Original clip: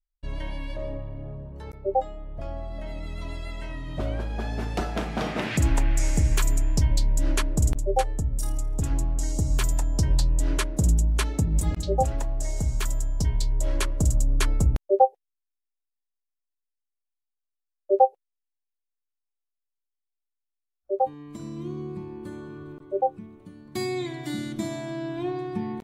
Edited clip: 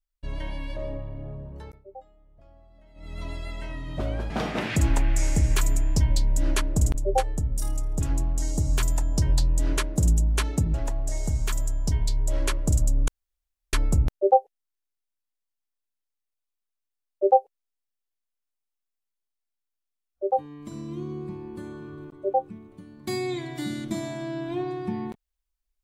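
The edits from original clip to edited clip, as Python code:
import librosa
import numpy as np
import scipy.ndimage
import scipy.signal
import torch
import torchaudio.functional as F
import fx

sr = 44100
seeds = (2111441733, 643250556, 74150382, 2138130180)

y = fx.edit(x, sr, fx.fade_down_up(start_s=1.57, length_s=1.64, db=-20.0, fade_s=0.27),
    fx.cut(start_s=4.3, length_s=0.81),
    fx.cut(start_s=11.55, length_s=0.52),
    fx.insert_room_tone(at_s=14.41, length_s=0.65), tone=tone)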